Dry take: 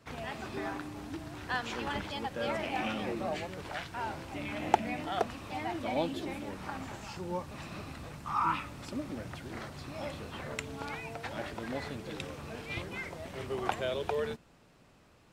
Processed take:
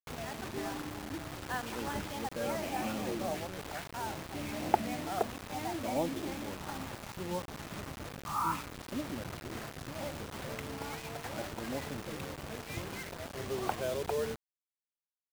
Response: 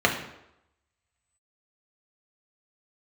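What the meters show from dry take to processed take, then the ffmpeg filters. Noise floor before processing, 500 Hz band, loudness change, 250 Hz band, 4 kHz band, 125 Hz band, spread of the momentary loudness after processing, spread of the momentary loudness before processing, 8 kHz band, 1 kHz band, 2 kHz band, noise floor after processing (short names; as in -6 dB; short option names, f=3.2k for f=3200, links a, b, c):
-61 dBFS, -0.5 dB, -1.0 dB, 0.0 dB, -1.5 dB, 0.0 dB, 8 LU, 10 LU, +6.0 dB, -2.0 dB, -3.0 dB, under -85 dBFS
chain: -af "equalizer=f=7k:w=0.32:g=-13.5,acrusher=bits=6:mix=0:aa=0.000001"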